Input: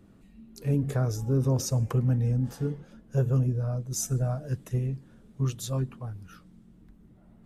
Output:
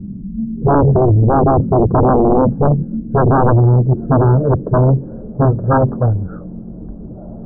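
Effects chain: low-pass sweep 200 Hz -> 600 Hz, 2.26–5.39; sine folder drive 14 dB, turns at -13 dBFS; brick-wall FIR low-pass 1700 Hz; gain +5.5 dB

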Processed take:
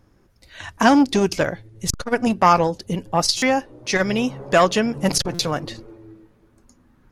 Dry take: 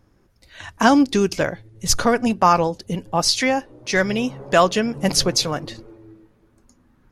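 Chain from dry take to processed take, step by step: stuck buffer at 3.37/5.34, samples 256, times 8; core saturation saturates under 630 Hz; gain +1.5 dB

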